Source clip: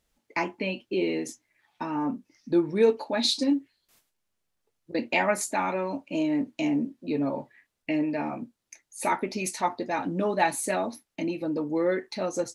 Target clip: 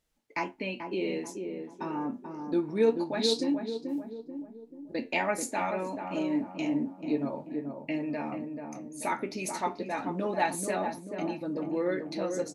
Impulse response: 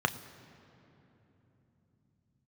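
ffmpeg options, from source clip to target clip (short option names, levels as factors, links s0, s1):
-filter_complex "[0:a]flanger=delay=6.3:depth=6:regen=78:speed=0.27:shape=sinusoidal,asplit=2[s0][s1];[s1]adelay=436,lowpass=f=890:p=1,volume=0.596,asplit=2[s2][s3];[s3]adelay=436,lowpass=f=890:p=1,volume=0.52,asplit=2[s4][s5];[s5]adelay=436,lowpass=f=890:p=1,volume=0.52,asplit=2[s6][s7];[s7]adelay=436,lowpass=f=890:p=1,volume=0.52,asplit=2[s8][s9];[s9]adelay=436,lowpass=f=890:p=1,volume=0.52,asplit=2[s10][s11];[s11]adelay=436,lowpass=f=890:p=1,volume=0.52,asplit=2[s12][s13];[s13]adelay=436,lowpass=f=890:p=1,volume=0.52[s14];[s0][s2][s4][s6][s8][s10][s12][s14]amix=inputs=8:normalize=0"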